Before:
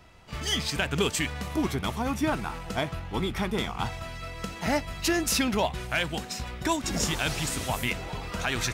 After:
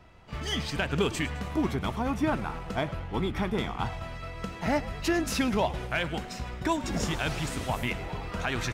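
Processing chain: treble shelf 3.6 kHz -10.5 dB; frequency-shifting echo 105 ms, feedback 59%, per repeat -77 Hz, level -16.5 dB

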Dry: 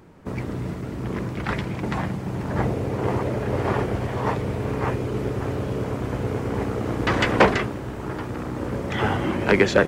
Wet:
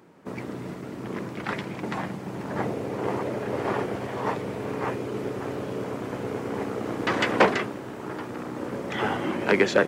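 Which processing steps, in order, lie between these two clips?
high-pass 190 Hz 12 dB/octave; trim -2.5 dB

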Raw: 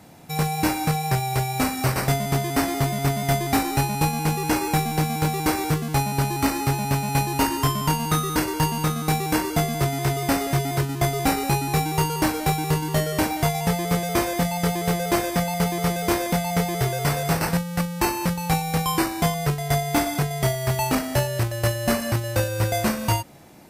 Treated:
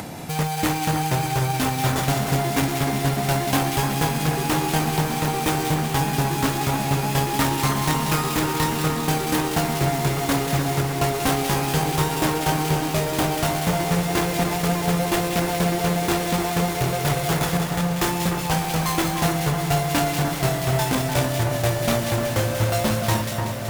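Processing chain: self-modulated delay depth 0.27 ms; vibrato 6.8 Hz 13 cents; two-band feedback delay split 2 kHz, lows 300 ms, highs 188 ms, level -5.5 dB; upward compressor, threshold -22 dBFS; on a send: echo that smears into a reverb 1320 ms, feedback 71%, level -13 dB

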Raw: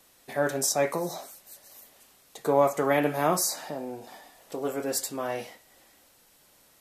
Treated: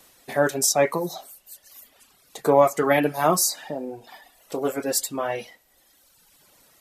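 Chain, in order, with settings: reverb removal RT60 1.4 s; trim +6 dB

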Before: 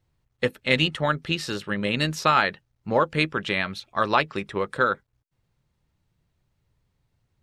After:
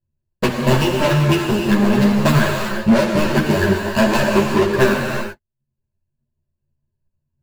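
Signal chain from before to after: median filter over 41 samples; rippled EQ curve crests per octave 1.4, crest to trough 16 dB; waveshaping leveller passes 5; in parallel at -2 dB: peak limiter -21 dBFS, peak gain reduction 11 dB; on the sum: transient shaper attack +6 dB, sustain -7 dB; gated-style reverb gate 410 ms flat, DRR 0 dB; three-phase chorus; trim -3.5 dB

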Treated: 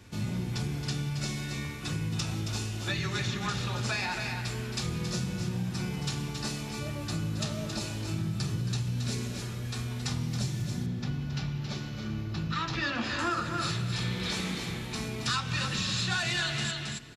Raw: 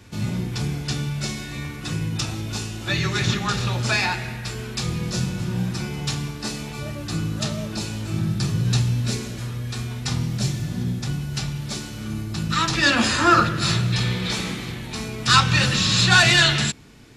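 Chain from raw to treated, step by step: delay 272 ms -9 dB; compression 5:1, threshold -23 dBFS, peak gain reduction 12 dB; 10.86–13.19 s: boxcar filter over 5 samples; reverberation RT60 4.1 s, pre-delay 106 ms, DRR 18.5 dB; trim -5 dB

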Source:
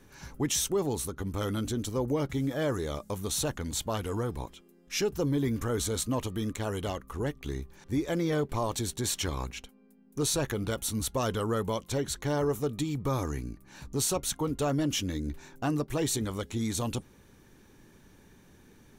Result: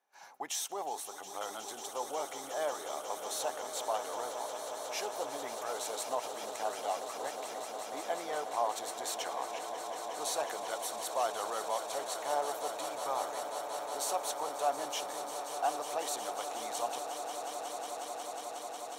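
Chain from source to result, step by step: resonant high-pass 740 Hz, resonance Q 4.9; gate -52 dBFS, range -15 dB; echo with a slow build-up 181 ms, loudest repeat 8, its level -12.5 dB; trim -7.5 dB

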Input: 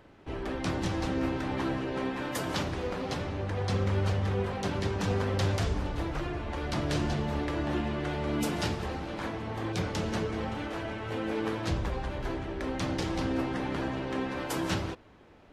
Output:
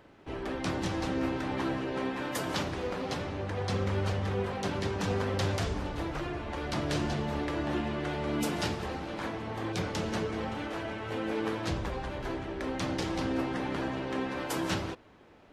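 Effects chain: bass shelf 100 Hz -6.5 dB

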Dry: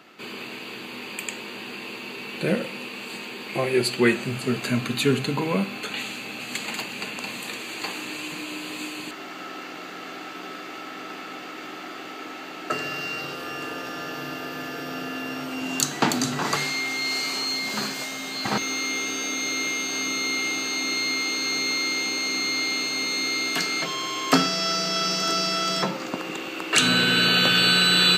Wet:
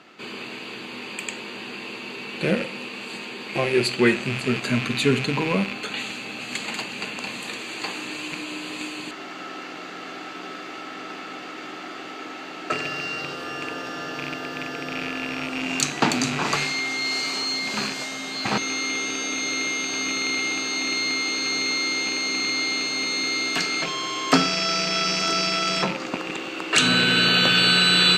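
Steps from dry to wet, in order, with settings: rattle on loud lows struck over -37 dBFS, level -19 dBFS; low-pass 8.6 kHz 12 dB/octave; trim +1 dB

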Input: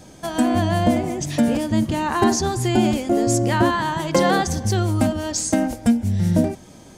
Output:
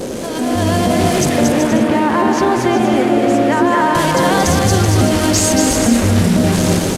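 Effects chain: one-bit delta coder 64 kbps, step -23.5 dBFS; 1.29–3.95 s: three-band isolator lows -16 dB, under 210 Hz, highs -16 dB, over 2.6 kHz; peak limiter -18 dBFS, peak gain reduction 12.5 dB; level rider gain up to 12 dB; bouncing-ball echo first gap 230 ms, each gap 0.65×, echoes 5; band noise 210–570 Hz -24 dBFS; trim -1 dB

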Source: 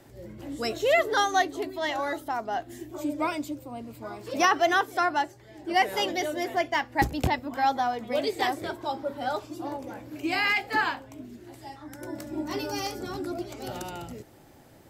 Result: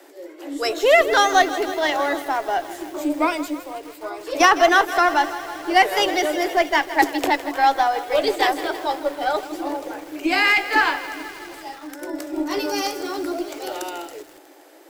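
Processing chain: Chebyshev high-pass 280 Hz, order 10; Chebyshev shaper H 8 -31 dB, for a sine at -10 dBFS; bit-crushed delay 160 ms, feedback 80%, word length 7-bit, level -14 dB; trim +8 dB

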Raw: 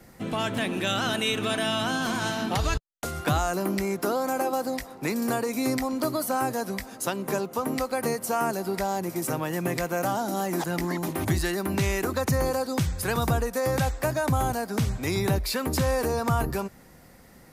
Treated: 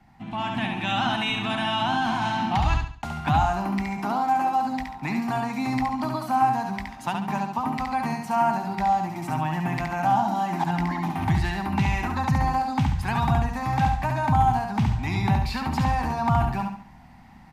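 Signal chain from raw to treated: FFT filter 240 Hz 0 dB, 500 Hz -22 dB, 820 Hz +8 dB, 1.3 kHz -5 dB, 2.6 kHz -1 dB, 11 kHz -21 dB; on a send: feedback delay 70 ms, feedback 36%, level -4.5 dB; on the sum: level rider gain up to 6.5 dB; trim -4 dB

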